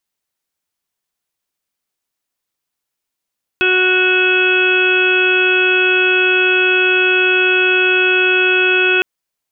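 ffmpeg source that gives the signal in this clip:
ffmpeg -f lavfi -i "aevalsrc='0.158*sin(2*PI*369*t)+0.0355*sin(2*PI*738*t)+0.0266*sin(2*PI*1107*t)+0.158*sin(2*PI*1476*t)+0.0299*sin(2*PI*1845*t)+0.0237*sin(2*PI*2214*t)+0.211*sin(2*PI*2583*t)+0.0251*sin(2*PI*2952*t)+0.0708*sin(2*PI*3321*t)':duration=5.41:sample_rate=44100" out.wav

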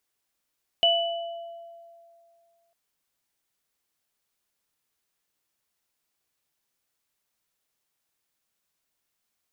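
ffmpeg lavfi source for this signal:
ffmpeg -f lavfi -i "aevalsrc='0.0891*pow(10,-3*t/2.39)*sin(2*PI*677*t)+0.158*pow(10,-3*t/0.91)*sin(2*PI*2970*t)':duration=1.9:sample_rate=44100" out.wav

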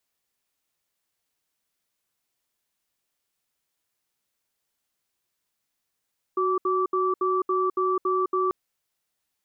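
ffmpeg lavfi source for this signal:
ffmpeg -f lavfi -i "aevalsrc='0.0668*(sin(2*PI*371*t)+sin(2*PI*1160*t))*clip(min(mod(t,0.28),0.21-mod(t,0.28))/0.005,0,1)':duration=2.14:sample_rate=44100" out.wav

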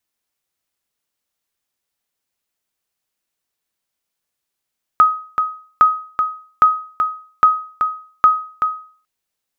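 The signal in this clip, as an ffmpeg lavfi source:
ffmpeg -f lavfi -i "aevalsrc='0.708*(sin(2*PI*1260*mod(t,0.81))*exp(-6.91*mod(t,0.81)/0.45)+0.447*sin(2*PI*1260*max(mod(t,0.81)-0.38,0))*exp(-6.91*max(mod(t,0.81)-0.38,0)/0.45))':duration=4.05:sample_rate=44100" out.wav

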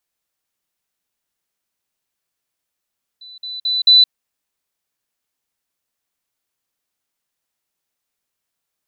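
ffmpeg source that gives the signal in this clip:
ffmpeg -f lavfi -i "aevalsrc='pow(10,(-36+10*floor(t/0.22))/20)*sin(2*PI*3990*t)*clip(min(mod(t,0.22),0.17-mod(t,0.22))/0.005,0,1)':duration=0.88:sample_rate=44100" out.wav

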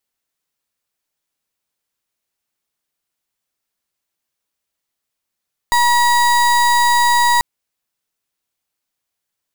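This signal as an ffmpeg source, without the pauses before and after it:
ffmpeg -f lavfi -i "aevalsrc='0.224*(2*lt(mod(960*t,1),0.33)-1)':duration=1.69:sample_rate=44100" out.wav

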